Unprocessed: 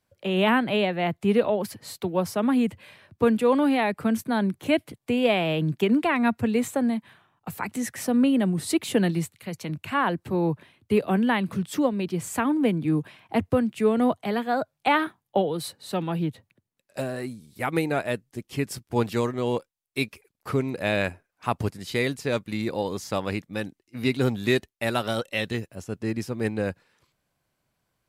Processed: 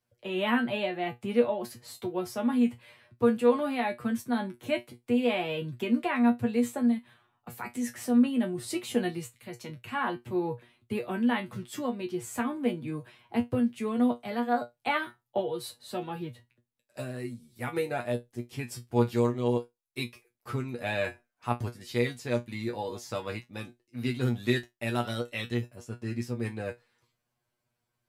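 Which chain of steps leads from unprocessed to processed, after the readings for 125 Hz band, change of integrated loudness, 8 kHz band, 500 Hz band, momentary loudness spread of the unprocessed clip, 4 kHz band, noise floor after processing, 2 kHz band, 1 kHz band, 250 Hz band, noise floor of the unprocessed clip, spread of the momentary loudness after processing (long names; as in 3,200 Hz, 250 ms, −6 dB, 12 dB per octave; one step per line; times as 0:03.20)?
−5.5 dB, −4.5 dB, −6.0 dB, −5.0 dB, 11 LU, −6.0 dB, −82 dBFS, −6.0 dB, −5.5 dB, −4.5 dB, −79 dBFS, 13 LU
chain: tuned comb filter 120 Hz, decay 0.16 s, harmonics all, mix 100%
level +1.5 dB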